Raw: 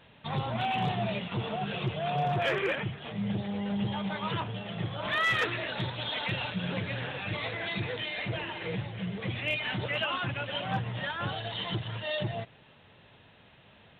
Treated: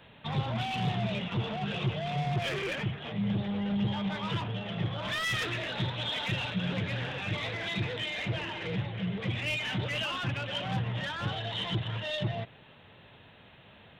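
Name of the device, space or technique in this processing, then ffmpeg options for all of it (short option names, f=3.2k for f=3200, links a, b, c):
one-band saturation: -filter_complex "[0:a]acrossover=split=230|2900[a][b][c];[b]asoftclip=type=tanh:threshold=-37dB[d];[a][d][c]amix=inputs=3:normalize=0,volume=2.5dB"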